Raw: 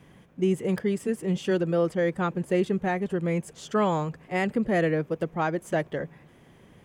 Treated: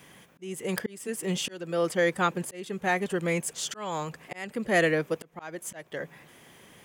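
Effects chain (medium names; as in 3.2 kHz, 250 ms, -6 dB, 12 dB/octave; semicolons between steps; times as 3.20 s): tilt EQ +3 dB/octave; slow attack 447 ms; trim +3.5 dB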